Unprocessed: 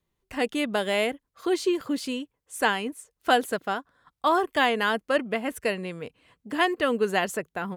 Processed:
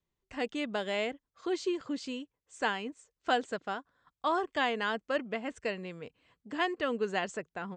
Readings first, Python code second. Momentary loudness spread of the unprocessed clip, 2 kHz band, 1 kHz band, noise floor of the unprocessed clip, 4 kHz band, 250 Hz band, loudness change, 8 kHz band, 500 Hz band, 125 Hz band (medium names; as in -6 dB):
11 LU, -7.5 dB, -7.5 dB, -81 dBFS, -7.5 dB, -7.5 dB, -7.5 dB, -11.0 dB, -7.5 dB, -7.5 dB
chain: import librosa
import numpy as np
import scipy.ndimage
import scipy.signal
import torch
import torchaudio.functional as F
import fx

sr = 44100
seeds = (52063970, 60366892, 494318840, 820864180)

y = scipy.signal.sosfilt(scipy.signal.butter(12, 8000.0, 'lowpass', fs=sr, output='sos'), x)
y = y * 10.0 ** (-7.5 / 20.0)